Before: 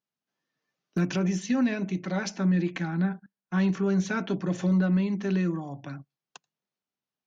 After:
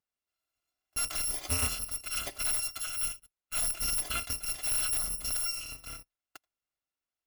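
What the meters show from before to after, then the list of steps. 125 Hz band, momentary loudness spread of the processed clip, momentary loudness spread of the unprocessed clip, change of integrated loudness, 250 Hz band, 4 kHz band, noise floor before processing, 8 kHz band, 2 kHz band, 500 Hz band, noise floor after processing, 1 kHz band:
-17.5 dB, 9 LU, 10 LU, -3.0 dB, -27.5 dB, +8.0 dB, under -85 dBFS, n/a, -5.0 dB, -17.0 dB, under -85 dBFS, -5.0 dB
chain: FFT order left unsorted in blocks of 256 samples; in parallel at -7 dB: wrapped overs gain 18 dB; on the sum: high shelf 4700 Hz -11.5 dB

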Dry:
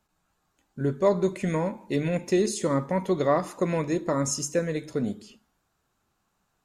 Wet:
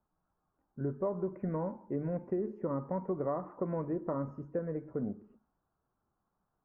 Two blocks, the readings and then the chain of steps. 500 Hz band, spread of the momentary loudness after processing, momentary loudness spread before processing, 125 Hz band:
-10.0 dB, 4 LU, 7 LU, -8.5 dB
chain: inverse Chebyshev low-pass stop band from 3400 Hz, stop band 50 dB; compressor, threshold -23 dBFS, peak gain reduction 7.5 dB; gain -6.5 dB

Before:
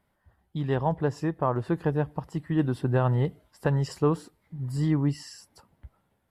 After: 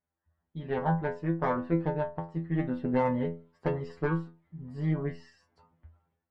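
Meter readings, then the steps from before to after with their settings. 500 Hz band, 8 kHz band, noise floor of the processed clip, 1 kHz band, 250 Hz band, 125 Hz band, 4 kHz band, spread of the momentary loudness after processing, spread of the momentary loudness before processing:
-2.5 dB, n/a, under -85 dBFS, -1.0 dB, -3.0 dB, -6.5 dB, under -10 dB, 15 LU, 10 LU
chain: LPF 2500 Hz 12 dB/oct; added harmonics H 2 -8 dB, 7 -33 dB, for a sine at -12 dBFS; metallic resonator 82 Hz, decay 0.37 s, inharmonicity 0.002; AGC gain up to 12 dB; gain -6.5 dB

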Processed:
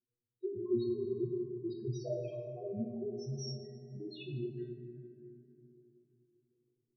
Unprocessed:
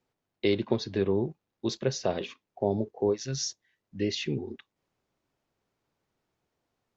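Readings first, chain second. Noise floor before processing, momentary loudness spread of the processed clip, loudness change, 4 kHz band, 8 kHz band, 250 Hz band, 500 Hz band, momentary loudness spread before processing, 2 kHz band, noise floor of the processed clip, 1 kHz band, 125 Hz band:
-85 dBFS, 15 LU, -9.0 dB, -15.5 dB, n/a, -7.0 dB, -8.0 dB, 8 LU, -21.0 dB, under -85 dBFS, -20.0 dB, -6.0 dB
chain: loudest bins only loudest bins 2; resonator 120 Hz, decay 0.29 s, harmonics all, mix 100%; plate-style reverb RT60 3.5 s, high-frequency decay 0.3×, DRR 2.5 dB; gain +7.5 dB

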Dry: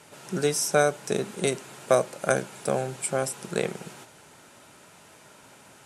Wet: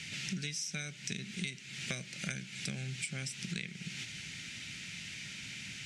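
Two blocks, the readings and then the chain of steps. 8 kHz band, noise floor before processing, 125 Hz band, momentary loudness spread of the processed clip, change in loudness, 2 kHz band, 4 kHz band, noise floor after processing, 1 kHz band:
-9.5 dB, -53 dBFS, -5.5 dB, 5 LU, -13.0 dB, -6.5 dB, -1.5 dB, -49 dBFS, -26.0 dB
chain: EQ curve 190 Hz 0 dB, 490 Hz -24 dB, 1100 Hz -25 dB, 2100 Hz +6 dB, 5900 Hz +2 dB, 12000 Hz -18 dB; compressor 10:1, threshold -45 dBFS, peak gain reduction 22 dB; gain +9 dB

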